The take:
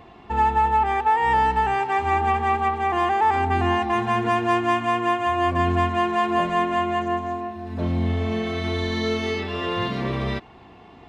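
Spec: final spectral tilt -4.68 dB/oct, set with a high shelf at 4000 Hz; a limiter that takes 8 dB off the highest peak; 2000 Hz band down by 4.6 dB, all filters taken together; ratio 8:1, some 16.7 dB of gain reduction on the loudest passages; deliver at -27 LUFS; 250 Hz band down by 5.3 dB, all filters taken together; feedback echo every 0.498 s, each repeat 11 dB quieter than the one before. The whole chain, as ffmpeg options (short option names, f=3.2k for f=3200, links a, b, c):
-af "equalizer=f=250:t=o:g=-8,equalizer=f=2k:t=o:g=-4.5,highshelf=f=4k:g=-4,acompressor=threshold=-35dB:ratio=8,alimiter=level_in=9dB:limit=-24dB:level=0:latency=1,volume=-9dB,aecho=1:1:498|996|1494:0.282|0.0789|0.0221,volume=14.5dB"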